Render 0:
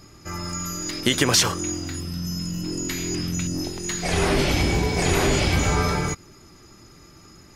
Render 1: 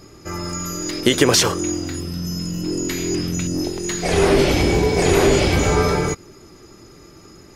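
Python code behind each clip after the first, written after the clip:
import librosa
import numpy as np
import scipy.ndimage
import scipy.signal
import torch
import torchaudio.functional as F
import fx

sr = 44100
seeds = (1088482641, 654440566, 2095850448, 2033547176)

y = fx.peak_eq(x, sr, hz=430.0, db=7.5, octaves=1.1)
y = y * 10.0 ** (2.0 / 20.0)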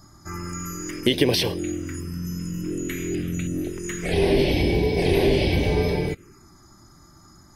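y = fx.env_phaser(x, sr, low_hz=430.0, high_hz=1300.0, full_db=-15.5)
y = y * 10.0 ** (-3.0 / 20.0)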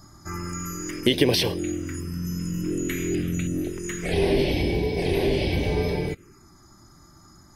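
y = fx.rider(x, sr, range_db=3, speed_s=2.0)
y = y * 10.0 ** (-1.5 / 20.0)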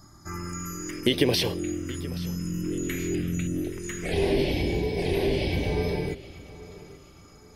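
y = fx.echo_feedback(x, sr, ms=827, feedback_pct=34, wet_db=-18)
y = y * 10.0 ** (-2.5 / 20.0)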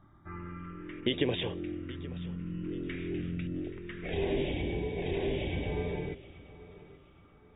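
y = fx.brickwall_lowpass(x, sr, high_hz=3800.0)
y = y * 10.0 ** (-7.0 / 20.0)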